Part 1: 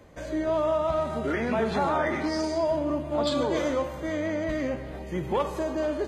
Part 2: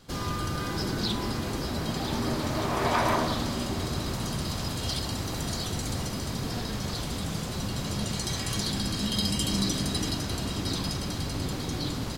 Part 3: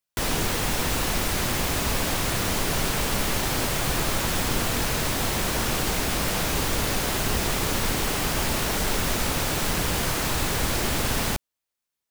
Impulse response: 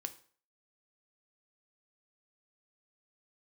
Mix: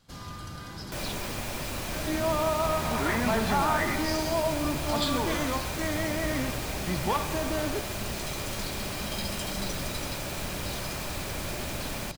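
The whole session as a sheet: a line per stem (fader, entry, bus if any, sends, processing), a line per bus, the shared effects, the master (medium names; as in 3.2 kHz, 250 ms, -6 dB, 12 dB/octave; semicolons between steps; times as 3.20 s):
+2.0 dB, 1.75 s, no send, peaking EQ 550 Hz -14 dB 0.22 oct
-11.0 dB, 0.00 s, send -7 dB, none
-10.5 dB, 0.75 s, no send, small resonant body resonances 370/580/2400 Hz, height 9 dB, ringing for 30 ms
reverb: on, RT60 0.45 s, pre-delay 3 ms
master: peaking EQ 370 Hz -6.5 dB 0.82 oct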